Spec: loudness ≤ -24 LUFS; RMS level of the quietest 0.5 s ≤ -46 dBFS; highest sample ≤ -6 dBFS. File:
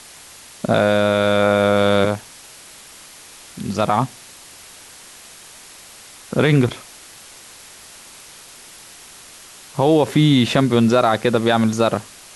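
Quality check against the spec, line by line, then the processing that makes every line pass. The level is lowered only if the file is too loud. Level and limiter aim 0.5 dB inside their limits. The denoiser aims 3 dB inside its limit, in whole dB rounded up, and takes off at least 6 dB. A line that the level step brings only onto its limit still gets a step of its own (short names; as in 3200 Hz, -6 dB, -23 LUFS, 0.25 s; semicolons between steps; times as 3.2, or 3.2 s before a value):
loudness -17.5 LUFS: fail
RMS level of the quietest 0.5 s -42 dBFS: fail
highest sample -4.5 dBFS: fail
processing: gain -7 dB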